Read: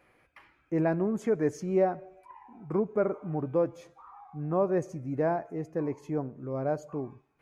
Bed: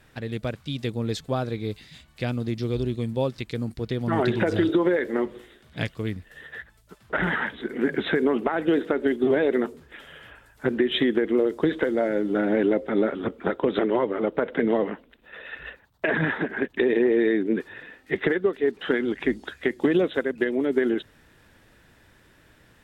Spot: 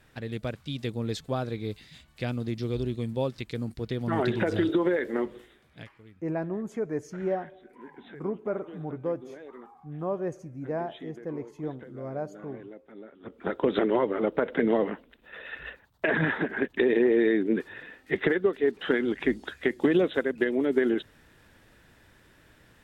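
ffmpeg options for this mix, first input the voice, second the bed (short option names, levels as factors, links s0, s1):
-filter_complex "[0:a]adelay=5500,volume=0.631[s0];[1:a]volume=8.41,afade=t=out:st=5.33:d=0.57:silence=0.1,afade=t=in:st=13.2:d=0.45:silence=0.0794328[s1];[s0][s1]amix=inputs=2:normalize=0"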